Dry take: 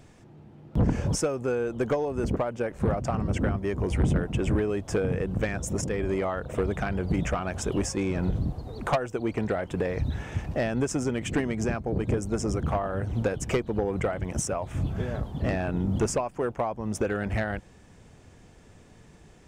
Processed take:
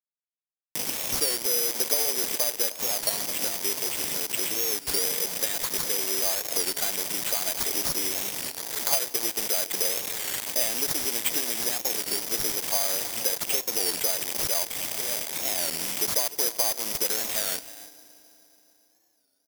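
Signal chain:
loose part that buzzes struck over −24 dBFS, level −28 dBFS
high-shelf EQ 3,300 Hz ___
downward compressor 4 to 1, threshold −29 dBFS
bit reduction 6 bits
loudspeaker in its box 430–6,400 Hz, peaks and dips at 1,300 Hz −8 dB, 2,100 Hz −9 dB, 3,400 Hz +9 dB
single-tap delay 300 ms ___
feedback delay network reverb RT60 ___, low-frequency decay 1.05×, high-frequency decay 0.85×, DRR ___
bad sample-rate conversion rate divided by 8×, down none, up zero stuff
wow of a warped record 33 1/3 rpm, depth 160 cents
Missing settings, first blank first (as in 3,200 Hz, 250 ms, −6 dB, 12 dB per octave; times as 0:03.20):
+6 dB, −17.5 dB, 3.8 s, 17.5 dB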